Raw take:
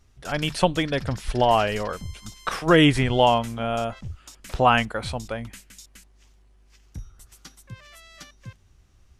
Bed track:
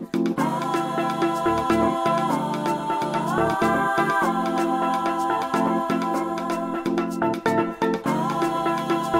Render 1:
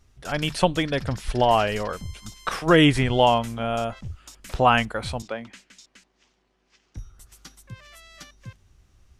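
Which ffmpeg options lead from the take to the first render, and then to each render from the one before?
-filter_complex "[0:a]asettb=1/sr,asplit=3[a][b][c];[a]atrim=end=5.224[d];[b]atrim=start=5.22:end=6.97,asetpts=PTS-STARTPTS,afade=t=in:d=0.004:c=qsin,afade=t=out:st=1.746:d=0.004:c=qsin,acrossover=split=170 6800:gain=0.1 1 0.0631[e][f][g];[e][f][g]amix=inputs=3:normalize=0[h];[c]atrim=start=6.966[i];[d][h]acrossfade=d=0.004:c1=hsin:c2=qsin[j];[j][i]acrossfade=d=0.004:c1=qsin:c2=hsin"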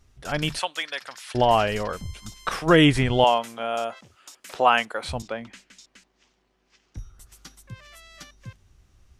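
-filter_complex "[0:a]asettb=1/sr,asplit=3[a][b][c];[a]atrim=end=0.594[d];[b]atrim=start=0.59:end=1.35,asetpts=PTS-STARTPTS,afade=t=in:d=0.004:c=qsin,afade=t=out:st=0.756:d=0.004:c=qsin,highpass=1.1k[e];[c]atrim=start=1.346[f];[d][e]acrossfade=d=0.004:c1=hsin:c2=qsin[g];[g][f]acrossfade=d=0.004:c1=qsin:c2=hsin,asettb=1/sr,asplit=3[h][i][j];[h]atrim=end=3.244[k];[i]atrim=start=3.24:end=5.09,asetpts=PTS-STARTPTS,afade=t=in:d=0.004:c=qsin,afade=t=out:st=1.846:d=0.004:c=qsin,highpass=380[l];[j]atrim=start=5.086[m];[k][l]acrossfade=d=0.004:c1=hsin:c2=qsin[n];[n][m]acrossfade=d=0.004:c1=qsin:c2=hsin"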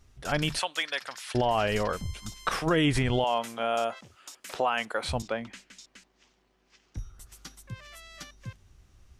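-af "alimiter=limit=-16dB:level=0:latency=1:release=81"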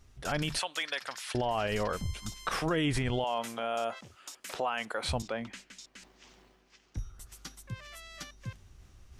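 -af "alimiter=limit=-21.5dB:level=0:latency=1:release=91,areverse,acompressor=mode=upward:threshold=-48dB:ratio=2.5,areverse"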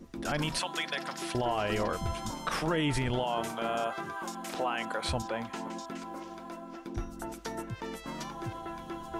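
-filter_complex "[1:a]volume=-17.5dB[a];[0:a][a]amix=inputs=2:normalize=0"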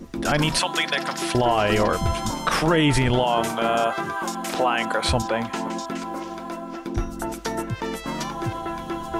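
-af "volume=10.5dB"

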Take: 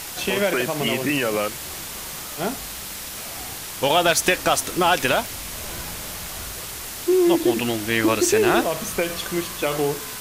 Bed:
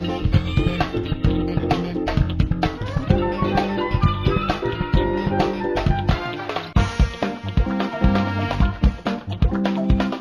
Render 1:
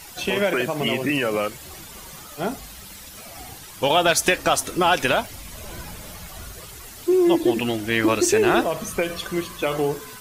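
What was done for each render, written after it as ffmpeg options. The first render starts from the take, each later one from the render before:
-af "afftdn=nr=11:nf=-34"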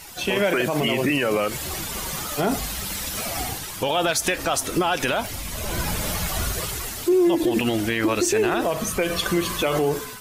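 -af "dynaudnorm=f=190:g=5:m=12dB,alimiter=limit=-12.5dB:level=0:latency=1:release=78"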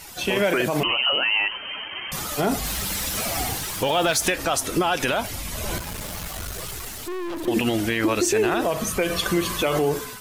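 -filter_complex "[0:a]asettb=1/sr,asplit=3[a][b][c];[a]atrim=end=0.834[d];[b]atrim=start=0.83:end=2.12,asetpts=PTS-STARTPTS,afade=t=in:d=0.004:c=qsin,afade=t=out:st=1.286:d=0.004:c=qsin,lowpass=f=2.7k:t=q:w=0.5098,lowpass=f=2.7k:t=q:w=0.6013,lowpass=f=2.7k:t=q:w=0.9,lowpass=f=2.7k:t=q:w=2.563,afreqshift=-3200[e];[c]atrim=start=2.116[f];[d][e]acrossfade=d=0.004:c1=hsin:c2=qsin[g];[g][f]acrossfade=d=0.004:c1=qsin:c2=hsin,asettb=1/sr,asplit=3[h][i][j];[h]atrim=end=2.654[k];[i]atrim=start=2.65:end=4.3,asetpts=PTS-STARTPTS,afade=t=in:d=0.004:c=qsin,afade=t=out:st=1.646:d=0.004:c=qsin,aeval=exprs='val(0)+0.5*0.0237*sgn(val(0))':c=same[l];[j]atrim=start=4.296[m];[k][l]acrossfade=d=0.004:c1=hsin:c2=qsin[n];[n][m]acrossfade=d=0.004:c1=qsin:c2=hsin,asettb=1/sr,asplit=3[o][p][q];[o]atrim=end=5.784[r];[p]atrim=start=5.78:end=7.48,asetpts=PTS-STARTPTS,afade=t=in:d=0.004:c=qsin,afade=t=out:st=1.696:d=0.004:c=qsin,aeval=exprs='(tanh(28.2*val(0)+0.55)-tanh(0.55))/28.2':c=same[s];[q]atrim=start=7.476[t];[r][s]acrossfade=d=0.004:c1=hsin:c2=qsin[u];[u][t]acrossfade=d=0.004:c1=qsin:c2=hsin"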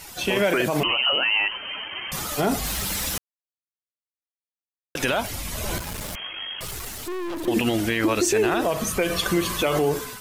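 -filter_complex "[0:a]asettb=1/sr,asplit=3[a][b][c];[a]atrim=end=6.154[d];[b]atrim=start=6.15:end=6.61,asetpts=PTS-STARTPTS,afade=t=in:d=0.004:c=qsin,afade=t=out:st=0.456:d=0.004:c=qsin,lowpass=f=2.8k:t=q:w=0.5098,lowpass=f=2.8k:t=q:w=0.6013,lowpass=f=2.8k:t=q:w=0.9,lowpass=f=2.8k:t=q:w=2.563,afreqshift=-3300[e];[c]atrim=start=6.606[f];[d][e]acrossfade=d=0.004:c1=hsin:c2=qsin[g];[g][f]acrossfade=d=0.004:c1=qsin:c2=hsin,asplit=3[h][i][j];[h]atrim=end=3.18,asetpts=PTS-STARTPTS,afade=t=out:st=3.176:d=0.004:c=hsin[k];[i]atrim=start=3.18:end=4.95,asetpts=PTS-STARTPTS,volume=0[l];[j]atrim=start=4.95,asetpts=PTS-STARTPTS,afade=t=in:d=0.004:c=hsin[m];[k][l][m]concat=n=3:v=0:a=1"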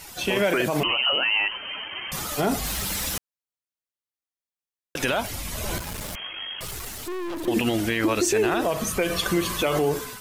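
-af "volume=-1dB"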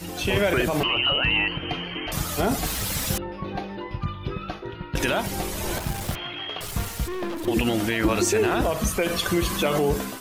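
-filter_complex "[1:a]volume=-11.5dB[a];[0:a][a]amix=inputs=2:normalize=0"

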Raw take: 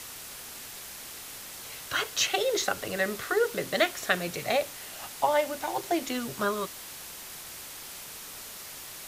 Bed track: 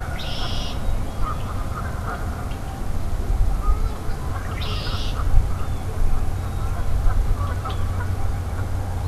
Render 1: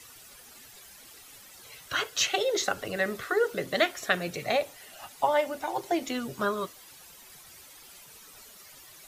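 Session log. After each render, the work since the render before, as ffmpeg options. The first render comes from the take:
-af "afftdn=nr=12:nf=-43"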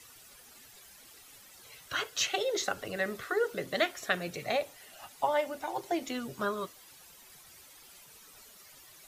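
-af "volume=-4dB"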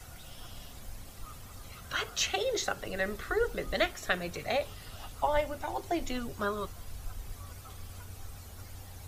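-filter_complex "[1:a]volume=-22dB[a];[0:a][a]amix=inputs=2:normalize=0"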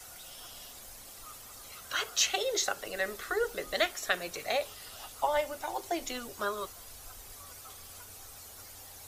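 -af "bass=f=250:g=-14,treble=f=4k:g=6"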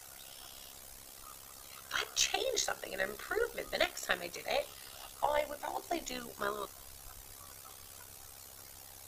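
-af "tremolo=f=67:d=0.71,aeval=exprs='0.211*(cos(1*acos(clip(val(0)/0.211,-1,1)))-cos(1*PI/2))+0.00668*(cos(6*acos(clip(val(0)/0.211,-1,1)))-cos(6*PI/2))':c=same"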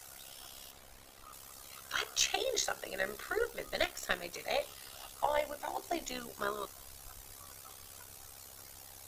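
-filter_complex "[0:a]asettb=1/sr,asplit=3[a][b][c];[a]atrim=end=0.714[d];[b]atrim=start=0.71:end=1.33,asetpts=PTS-STARTPTS,afade=t=in:d=0.004:c=qsin,afade=t=out:st=0.616:d=0.004:c=qsin,acrossover=split=3800[e][f];[f]acompressor=threshold=-57dB:ratio=4:attack=1:release=60[g];[e][g]amix=inputs=2:normalize=0[h];[c]atrim=start=1.326[i];[d][h]acrossfade=d=0.004:c1=hsin:c2=qsin[j];[j][i]acrossfade=d=0.004:c1=qsin:c2=hsin,asettb=1/sr,asplit=3[k][l][m];[k]atrim=end=3.434[n];[l]atrim=start=3.43:end=4.33,asetpts=PTS-STARTPTS,afade=t=in:d=0.004:c=qsin,afade=t=out:st=0.896:d=0.004:c=qsin,aeval=exprs='if(lt(val(0),0),0.708*val(0),val(0))':c=same[o];[m]atrim=start=4.326[p];[n][o]acrossfade=d=0.004:c1=hsin:c2=qsin[q];[q][p]acrossfade=d=0.004:c1=qsin:c2=hsin"

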